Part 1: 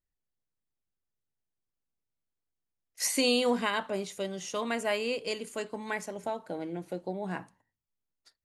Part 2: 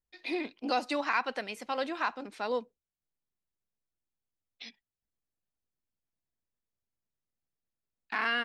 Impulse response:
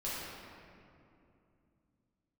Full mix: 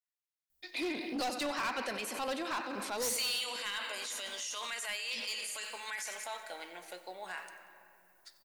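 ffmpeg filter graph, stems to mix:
-filter_complex "[0:a]highpass=1400,adynamicequalizer=threshold=0.00447:dfrequency=2500:dqfactor=0.7:tfrequency=2500:tqfactor=0.7:attack=5:release=100:ratio=0.375:range=3.5:mode=boostabove:tftype=highshelf,volume=-4dB,asplit=3[link_01][link_02][link_03];[link_02]volume=-13dB[link_04];[link_03]volume=-17.5dB[link_05];[1:a]aemphasis=mode=production:type=50fm,adelay=500,volume=0.5dB,asplit=3[link_06][link_07][link_08];[link_07]volume=-17.5dB[link_09];[link_08]volume=-14.5dB[link_10];[2:a]atrim=start_sample=2205[link_11];[link_04][link_09]amix=inputs=2:normalize=0[link_12];[link_12][link_11]afir=irnorm=-1:irlink=0[link_13];[link_05][link_10]amix=inputs=2:normalize=0,aecho=0:1:92|184|276|368|460|552|644|736:1|0.54|0.292|0.157|0.085|0.0459|0.0248|0.0134[link_14];[link_01][link_06][link_13][link_14]amix=inputs=4:normalize=0,asoftclip=type=hard:threshold=-28.5dB,dynaudnorm=framelen=220:gausssize=9:maxgain=9dB,alimiter=level_in=7dB:limit=-24dB:level=0:latency=1:release=17,volume=-7dB"

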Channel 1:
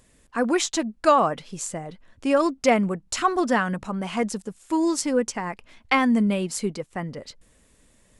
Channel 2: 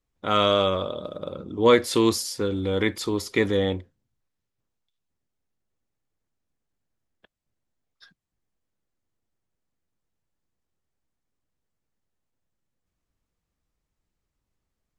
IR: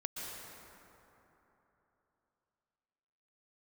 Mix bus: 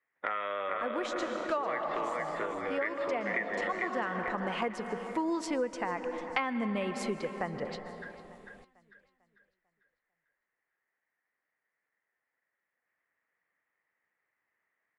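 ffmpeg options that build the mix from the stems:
-filter_complex "[0:a]lowshelf=frequency=260:gain=11,adelay=450,volume=-0.5dB,asplit=3[link_01][link_02][link_03];[link_02]volume=-9dB[link_04];[link_03]volume=-18dB[link_05];[1:a]highpass=150,acompressor=threshold=-29dB:ratio=6,lowpass=frequency=1900:width_type=q:width=7.1,volume=0dB,asplit=3[link_06][link_07][link_08];[link_07]volume=-5.5dB[link_09];[link_08]apad=whole_len=381185[link_10];[link_01][link_10]sidechaincompress=threshold=-41dB:ratio=8:attack=16:release=594[link_11];[2:a]atrim=start_sample=2205[link_12];[link_04][link_12]afir=irnorm=-1:irlink=0[link_13];[link_05][link_09]amix=inputs=2:normalize=0,aecho=0:1:447|894|1341|1788|2235|2682:1|0.41|0.168|0.0689|0.0283|0.0116[link_14];[link_11][link_06][link_13][link_14]amix=inputs=4:normalize=0,acrossover=split=420 3700:gain=0.158 1 0.141[link_15][link_16][link_17];[link_15][link_16][link_17]amix=inputs=3:normalize=0,acompressor=threshold=-30dB:ratio=4"

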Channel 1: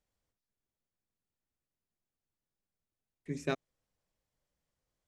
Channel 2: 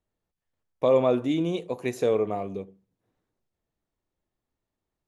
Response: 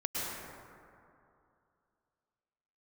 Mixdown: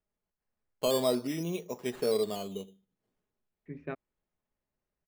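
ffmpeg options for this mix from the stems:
-filter_complex "[0:a]lowpass=frequency=2400:width=0.5412,lowpass=frequency=2400:width=1.3066,adelay=400,volume=-5dB[link_01];[1:a]acrusher=samples=10:mix=1:aa=0.000001:lfo=1:lforange=6:lforate=0.46,aecho=1:1:4.8:0.43,volume=-6.5dB[link_02];[link_01][link_02]amix=inputs=2:normalize=0"

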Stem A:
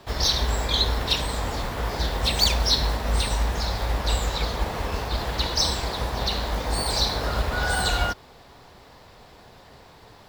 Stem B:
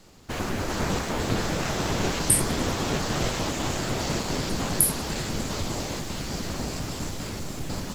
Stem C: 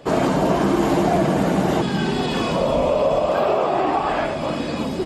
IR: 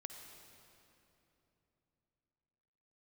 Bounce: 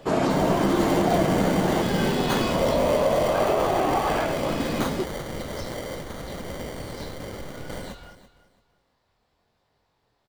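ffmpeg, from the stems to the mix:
-filter_complex "[0:a]flanger=delay=20:depth=6.3:speed=0.82,volume=-19.5dB,asplit=2[link_01][link_02];[link_02]volume=-15.5dB[link_03];[1:a]aeval=exprs='0.75*(cos(1*acos(clip(val(0)/0.75,-1,1)))-cos(1*PI/2))+0.299*(cos(5*acos(clip(val(0)/0.75,-1,1)))-cos(5*PI/2))':channel_layout=same,equalizer=frequency=530:width=2.3:gain=11.5,acrusher=samples=17:mix=1:aa=0.000001,volume=-15dB,asplit=2[link_04][link_05];[link_05]volume=-15.5dB[link_06];[2:a]volume=-3.5dB[link_07];[link_03][link_06]amix=inputs=2:normalize=0,aecho=0:1:335|670|1005|1340:1|0.23|0.0529|0.0122[link_08];[link_01][link_04][link_07][link_08]amix=inputs=4:normalize=0"

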